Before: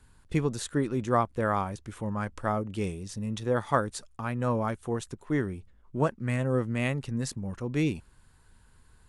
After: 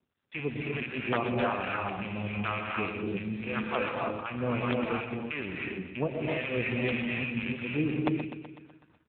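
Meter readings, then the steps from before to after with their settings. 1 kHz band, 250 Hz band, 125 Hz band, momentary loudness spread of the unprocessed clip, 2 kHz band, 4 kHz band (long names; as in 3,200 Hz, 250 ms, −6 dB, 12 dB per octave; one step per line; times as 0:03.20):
−3.0 dB, −1.0 dB, −5.0 dB, 9 LU, +4.5 dB, +3.0 dB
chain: loose part that buzzes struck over −35 dBFS, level −22 dBFS
in parallel at −2 dB: downward compressor 6 to 1, threshold −39 dBFS, peak gain reduction 18.5 dB
on the sum: two-band tremolo in antiphase 1.8 Hz, depth 100%, crossover 780 Hz
high-frequency loss of the air 52 metres
reverb whose tail is shaped and stops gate 340 ms rising, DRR −2.5 dB
wrap-around overflow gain 15.5 dB
on a send: repeating echo 125 ms, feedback 59%, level −10 dB
on the sum: noise gate −50 dBFS, range −26 dB
low-shelf EQ 160 Hz −10 dB
AMR narrowband 7.4 kbit/s 8,000 Hz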